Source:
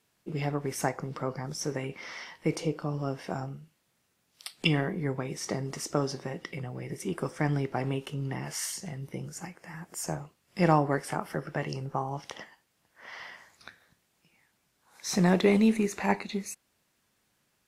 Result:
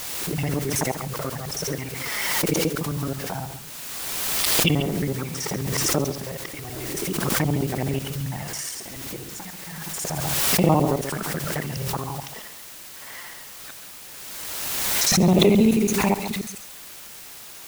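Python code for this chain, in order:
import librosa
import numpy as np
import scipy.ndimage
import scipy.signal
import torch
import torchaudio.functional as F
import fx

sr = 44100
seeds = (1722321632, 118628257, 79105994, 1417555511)

p1 = fx.local_reverse(x, sr, ms=54.0)
p2 = fx.env_flanger(p1, sr, rest_ms=11.2, full_db=-25.5)
p3 = p2 + 10.0 ** (-11.5 / 20.0) * np.pad(p2, (int(136 * sr / 1000.0), 0))[:len(p2)]
p4 = fx.quant_dither(p3, sr, seeds[0], bits=6, dither='triangular')
p5 = p3 + F.gain(torch.from_numpy(p4), -7.5).numpy()
p6 = fx.pre_swell(p5, sr, db_per_s=22.0)
y = F.gain(torch.from_numpy(p6), 2.5).numpy()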